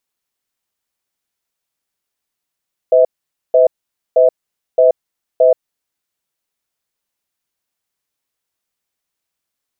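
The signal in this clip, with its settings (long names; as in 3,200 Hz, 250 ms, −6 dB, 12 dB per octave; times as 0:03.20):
tone pair in a cadence 507 Hz, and 644 Hz, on 0.13 s, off 0.49 s, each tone −9 dBFS 3.05 s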